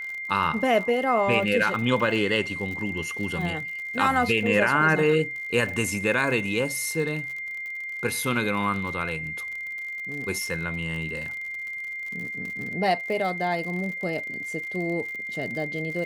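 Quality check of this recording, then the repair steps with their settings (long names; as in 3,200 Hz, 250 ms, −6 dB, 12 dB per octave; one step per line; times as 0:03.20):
surface crackle 57 per second −33 dBFS
whistle 2,100 Hz −31 dBFS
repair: click removal
notch filter 2,100 Hz, Q 30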